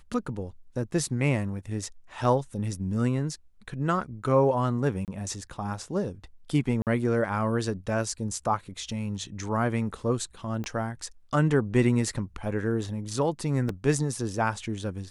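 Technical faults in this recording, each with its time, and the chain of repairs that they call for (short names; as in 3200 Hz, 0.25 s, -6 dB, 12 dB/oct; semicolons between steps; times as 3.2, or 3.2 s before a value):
5.05–5.08 gap 28 ms
6.82–6.87 gap 48 ms
10.64 pop -22 dBFS
13.69 gap 2.6 ms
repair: de-click; interpolate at 5.05, 28 ms; interpolate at 6.82, 48 ms; interpolate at 13.69, 2.6 ms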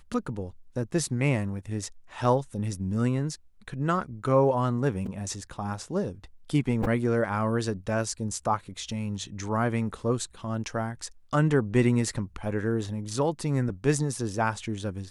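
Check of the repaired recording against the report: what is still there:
10.64 pop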